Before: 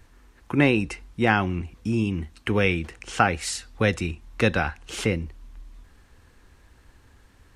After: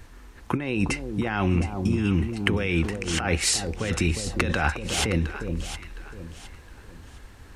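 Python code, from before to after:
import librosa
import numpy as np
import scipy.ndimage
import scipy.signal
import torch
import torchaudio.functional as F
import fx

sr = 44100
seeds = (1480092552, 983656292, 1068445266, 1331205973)

p1 = fx.over_compress(x, sr, threshold_db=-27.0, ratio=-1.0)
p2 = p1 + fx.echo_alternate(p1, sr, ms=357, hz=990.0, feedback_pct=56, wet_db=-6, dry=0)
y = p2 * 10.0 ** (3.0 / 20.0)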